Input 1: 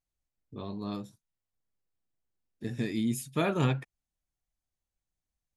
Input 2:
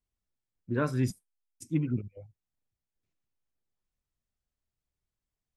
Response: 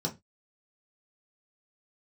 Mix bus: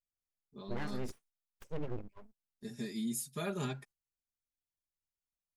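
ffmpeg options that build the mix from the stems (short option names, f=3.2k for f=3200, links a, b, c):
-filter_complex "[0:a]aecho=1:1:4.9:0.93,aexciter=amount=3.5:drive=6.1:freq=4k,volume=-11.5dB[a];[1:a]aeval=exprs='abs(val(0))':c=same,volume=-4.5dB[b];[a][b]amix=inputs=2:normalize=0,agate=range=-10dB:threshold=-58dB:ratio=16:detection=peak,highshelf=f=6.8k:g=-6,alimiter=level_in=3dB:limit=-24dB:level=0:latency=1:release=59,volume=-3dB"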